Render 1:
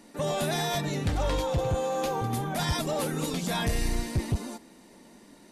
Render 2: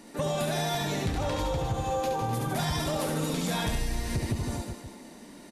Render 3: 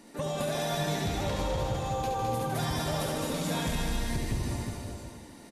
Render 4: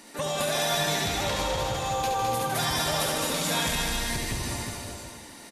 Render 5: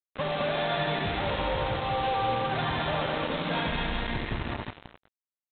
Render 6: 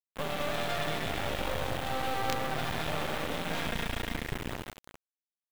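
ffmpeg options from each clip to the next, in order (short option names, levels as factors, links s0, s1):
-filter_complex "[0:a]asplit=2[s0][s1];[s1]aecho=0:1:70|154|254.8|375.8|520.9:0.631|0.398|0.251|0.158|0.1[s2];[s0][s2]amix=inputs=2:normalize=0,acompressor=threshold=0.0355:ratio=6,volume=1.41"
-af "aecho=1:1:210|357|459.9|531.9|582.4:0.631|0.398|0.251|0.158|0.1,volume=0.668"
-af "tiltshelf=f=650:g=-6,volume=1.5"
-af "lowpass=f=2000:p=1,aresample=8000,acrusher=bits=4:mix=0:aa=0.5,aresample=44100"
-af "equalizer=f=1000:w=7.2:g=-9.5,acrusher=bits=4:dc=4:mix=0:aa=0.000001"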